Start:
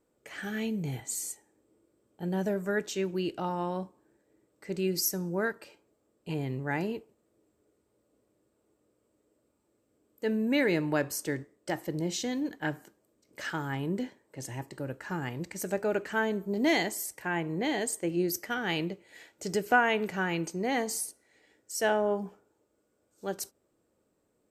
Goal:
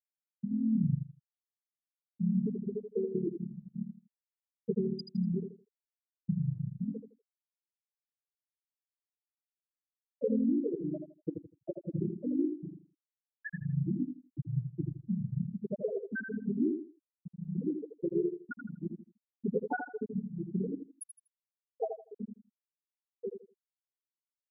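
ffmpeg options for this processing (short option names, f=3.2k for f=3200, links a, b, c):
-filter_complex "[0:a]acrossover=split=630|1200[a][b][c];[c]acrusher=bits=6:mix=0:aa=0.000001[d];[a][b][d]amix=inputs=3:normalize=0,equalizer=f=130:w=0.86:g=3,acompressor=threshold=-34dB:ratio=6,asplit=3[e][f][g];[f]asetrate=35002,aresample=44100,atempo=1.25992,volume=-13dB[h];[g]asetrate=52444,aresample=44100,atempo=0.840896,volume=-3dB[i];[e][h][i]amix=inputs=3:normalize=0,afftfilt=real='re*gte(hypot(re,im),0.141)':imag='im*gte(hypot(re,im),0.141)':win_size=1024:overlap=0.75,aecho=1:1:81|162|243:0.447|0.107|0.0257,volume=6.5dB"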